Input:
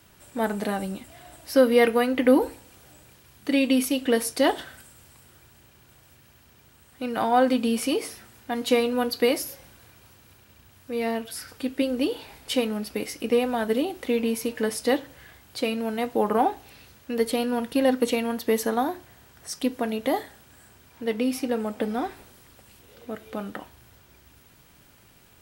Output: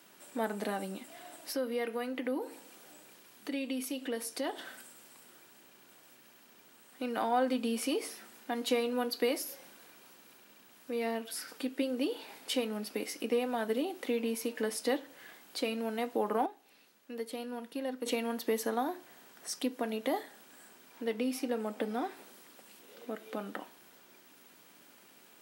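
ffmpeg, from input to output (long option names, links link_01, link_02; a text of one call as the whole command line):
ffmpeg -i in.wav -filter_complex "[0:a]asettb=1/sr,asplit=3[link_01][link_02][link_03];[link_01]atrim=end=1.524[link_04];[link_02]atrim=start=1.52:end=4.65,asetpts=PTS-STARTPTS,afade=type=in:duration=0.004:curve=qsin,afade=type=out:start_time=3.126:duration=0.004:curve=qsin,acompressor=threshold=-41dB:ratio=1.5:attack=3.2:release=140:knee=1:detection=peak[link_05];[link_03]atrim=start=4.646[link_06];[link_04][link_05]acrossfade=duration=0.004:curve1=hsin:curve2=qsin[link_07];[link_07][link_06]acrossfade=duration=0.004:curve1=qsin:curve2=hsin,asplit=3[link_08][link_09][link_10];[link_08]atrim=end=16.462[link_11];[link_09]atrim=start=16.458:end=18.062,asetpts=PTS-STARTPTS,volume=-10.5dB[link_12];[link_10]atrim=start=18.058[link_13];[link_11][link_12]acrossfade=duration=0.004:curve1=hsin:curve2=hsin[link_14];[link_14][link_13]acrossfade=duration=0.004:curve1=hsin:curve2=hsin,acompressor=threshold=-36dB:ratio=1.5,highpass=frequency=210:width=0.5412,highpass=frequency=210:width=1.3066,volume=-2dB" out.wav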